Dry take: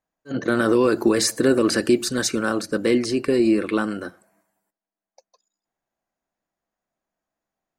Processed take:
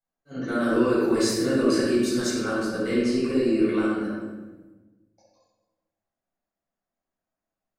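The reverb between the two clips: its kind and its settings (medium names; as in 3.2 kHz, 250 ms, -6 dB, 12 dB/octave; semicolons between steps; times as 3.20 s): simulated room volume 790 m³, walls mixed, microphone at 7.1 m; trim -17.5 dB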